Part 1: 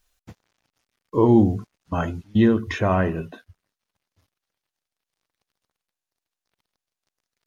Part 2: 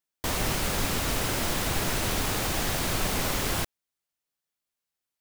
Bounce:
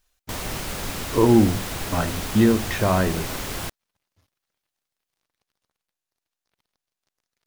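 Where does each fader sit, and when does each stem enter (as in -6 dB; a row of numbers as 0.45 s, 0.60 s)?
0.0 dB, -2.5 dB; 0.00 s, 0.05 s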